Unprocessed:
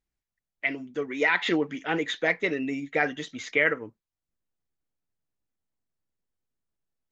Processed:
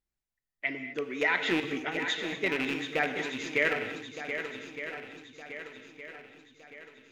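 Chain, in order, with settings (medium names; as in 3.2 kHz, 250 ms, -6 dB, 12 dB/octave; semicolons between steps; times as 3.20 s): rattle on loud lows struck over -33 dBFS, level -17 dBFS; 1.60–2.36 s: compressor with a negative ratio -29 dBFS, ratio -0.5; shuffle delay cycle 1214 ms, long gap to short 1.5:1, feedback 44%, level -8.5 dB; gated-style reverb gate 270 ms flat, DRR 8 dB; trim -4 dB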